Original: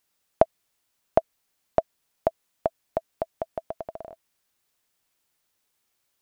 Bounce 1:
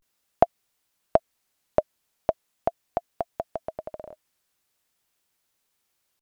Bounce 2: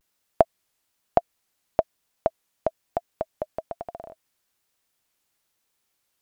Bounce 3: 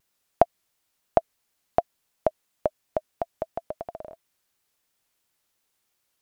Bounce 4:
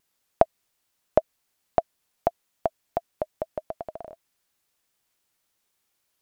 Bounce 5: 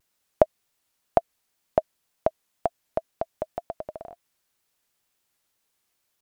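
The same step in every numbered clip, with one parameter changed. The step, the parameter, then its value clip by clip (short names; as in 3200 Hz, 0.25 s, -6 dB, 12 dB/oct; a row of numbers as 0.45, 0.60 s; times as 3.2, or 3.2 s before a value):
vibrato, rate: 0.42, 1.1, 2.9, 5.8, 2 Hz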